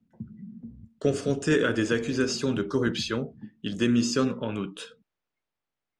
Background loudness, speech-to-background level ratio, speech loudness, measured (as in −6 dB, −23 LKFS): −44.5 LKFS, 17.5 dB, −27.0 LKFS